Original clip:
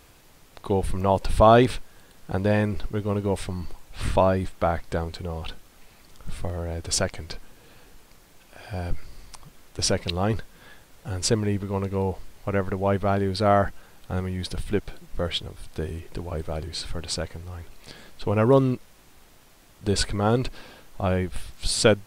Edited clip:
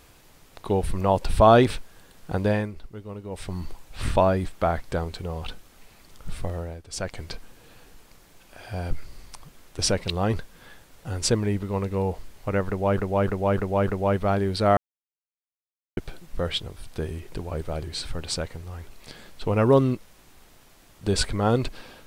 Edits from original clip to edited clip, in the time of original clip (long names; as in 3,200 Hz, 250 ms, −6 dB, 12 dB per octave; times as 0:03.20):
0:02.47–0:03.56: duck −11.5 dB, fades 0.26 s
0:06.56–0:07.19: duck −13.5 dB, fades 0.27 s
0:12.67–0:12.97: repeat, 5 plays
0:13.57–0:14.77: silence